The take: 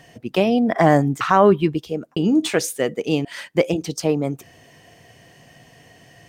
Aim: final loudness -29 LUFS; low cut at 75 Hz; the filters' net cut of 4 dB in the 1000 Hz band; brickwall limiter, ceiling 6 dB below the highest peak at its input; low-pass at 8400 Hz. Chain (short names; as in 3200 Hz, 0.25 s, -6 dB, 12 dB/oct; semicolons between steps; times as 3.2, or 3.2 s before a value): HPF 75 Hz; LPF 8400 Hz; bell 1000 Hz -5.5 dB; gain -6.5 dB; limiter -16.5 dBFS